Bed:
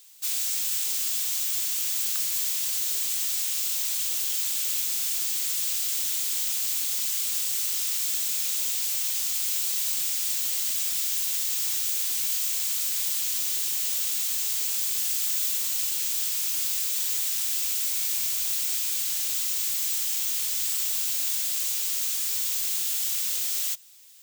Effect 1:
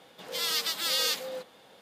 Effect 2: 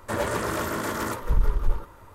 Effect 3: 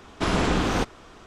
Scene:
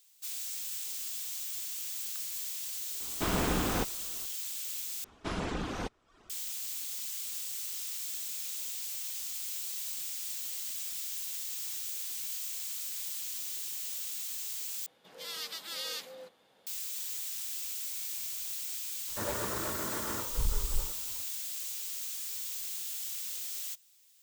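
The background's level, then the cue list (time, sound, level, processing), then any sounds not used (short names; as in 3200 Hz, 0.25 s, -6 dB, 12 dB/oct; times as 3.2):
bed -11 dB
3 add 3 -7.5 dB
5.04 replace with 3 -11 dB + reverb removal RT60 0.59 s
14.86 replace with 1 -10.5 dB
19.08 add 2 -9.5 dB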